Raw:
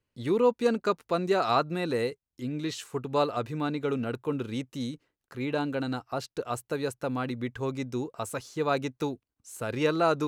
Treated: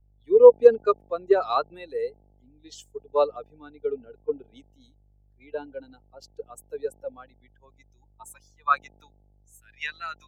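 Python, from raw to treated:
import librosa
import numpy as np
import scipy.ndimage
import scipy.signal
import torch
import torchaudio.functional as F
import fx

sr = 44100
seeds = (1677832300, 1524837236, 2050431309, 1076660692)

y = fx.bin_expand(x, sr, power=2.0)
y = fx.dynamic_eq(y, sr, hz=1200.0, q=2.9, threshold_db=-49.0, ratio=4.0, max_db=6)
y = fx.filter_sweep_highpass(y, sr, from_hz=450.0, to_hz=1900.0, start_s=6.81, end_s=9.8, q=4.9)
y = fx.dmg_buzz(y, sr, base_hz=50.0, harmonics=17, level_db=-53.0, tilt_db=-4, odd_only=False)
y = fx.band_widen(y, sr, depth_pct=70)
y = F.gain(torch.from_numpy(y), -4.0).numpy()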